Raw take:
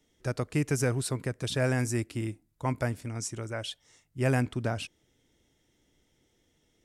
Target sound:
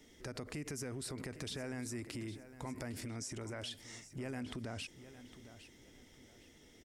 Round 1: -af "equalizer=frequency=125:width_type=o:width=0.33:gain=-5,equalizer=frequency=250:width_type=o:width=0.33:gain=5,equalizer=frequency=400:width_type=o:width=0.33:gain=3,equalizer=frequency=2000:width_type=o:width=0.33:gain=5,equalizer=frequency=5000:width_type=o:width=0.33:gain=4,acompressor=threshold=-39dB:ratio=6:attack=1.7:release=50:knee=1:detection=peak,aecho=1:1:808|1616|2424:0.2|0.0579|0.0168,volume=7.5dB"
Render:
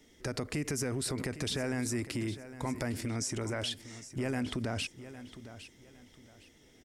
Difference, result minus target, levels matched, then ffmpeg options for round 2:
downward compressor: peak gain reduction −8.5 dB
-af "equalizer=frequency=125:width_type=o:width=0.33:gain=-5,equalizer=frequency=250:width_type=o:width=0.33:gain=5,equalizer=frequency=400:width_type=o:width=0.33:gain=3,equalizer=frequency=2000:width_type=o:width=0.33:gain=5,equalizer=frequency=5000:width_type=o:width=0.33:gain=4,acompressor=threshold=-49.5dB:ratio=6:attack=1.7:release=50:knee=1:detection=peak,aecho=1:1:808|1616|2424:0.2|0.0579|0.0168,volume=7.5dB"

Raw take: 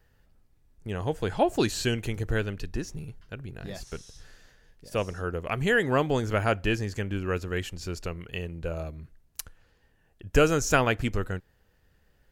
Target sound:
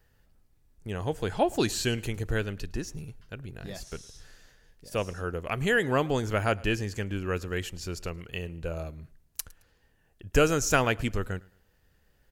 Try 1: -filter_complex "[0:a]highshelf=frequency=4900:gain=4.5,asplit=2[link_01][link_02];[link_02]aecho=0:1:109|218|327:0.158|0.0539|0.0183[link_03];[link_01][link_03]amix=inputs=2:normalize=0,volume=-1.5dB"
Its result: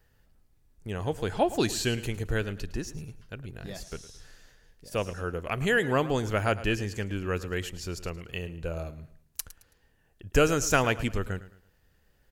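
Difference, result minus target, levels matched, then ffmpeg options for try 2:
echo-to-direct +8 dB
-filter_complex "[0:a]highshelf=frequency=4900:gain=4.5,asplit=2[link_01][link_02];[link_02]aecho=0:1:109|218:0.0631|0.0215[link_03];[link_01][link_03]amix=inputs=2:normalize=0,volume=-1.5dB"

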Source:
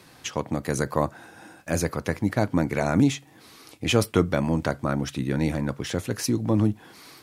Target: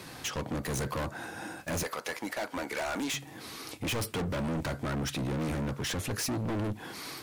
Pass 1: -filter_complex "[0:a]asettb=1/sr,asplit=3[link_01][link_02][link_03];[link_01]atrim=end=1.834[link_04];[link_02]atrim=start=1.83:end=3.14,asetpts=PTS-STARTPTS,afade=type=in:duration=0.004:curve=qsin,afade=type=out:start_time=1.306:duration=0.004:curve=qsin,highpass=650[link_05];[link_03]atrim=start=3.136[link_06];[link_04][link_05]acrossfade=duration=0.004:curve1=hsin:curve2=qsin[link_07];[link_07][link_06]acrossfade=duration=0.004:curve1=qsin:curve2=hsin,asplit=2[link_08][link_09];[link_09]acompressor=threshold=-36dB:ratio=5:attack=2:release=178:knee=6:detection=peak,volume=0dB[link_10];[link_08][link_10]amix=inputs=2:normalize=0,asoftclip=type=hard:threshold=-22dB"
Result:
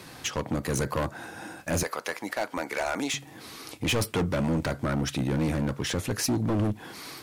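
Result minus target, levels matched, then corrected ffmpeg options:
hard clipping: distortion −4 dB
-filter_complex "[0:a]asettb=1/sr,asplit=3[link_01][link_02][link_03];[link_01]atrim=end=1.834[link_04];[link_02]atrim=start=1.83:end=3.14,asetpts=PTS-STARTPTS,afade=type=in:duration=0.004:curve=qsin,afade=type=out:start_time=1.306:duration=0.004:curve=qsin,highpass=650[link_05];[link_03]atrim=start=3.136[link_06];[link_04][link_05]acrossfade=duration=0.004:curve1=hsin:curve2=qsin[link_07];[link_07][link_06]acrossfade=duration=0.004:curve1=qsin:curve2=hsin,asplit=2[link_08][link_09];[link_09]acompressor=threshold=-36dB:ratio=5:attack=2:release=178:knee=6:detection=peak,volume=0dB[link_10];[link_08][link_10]amix=inputs=2:normalize=0,asoftclip=type=hard:threshold=-30dB"

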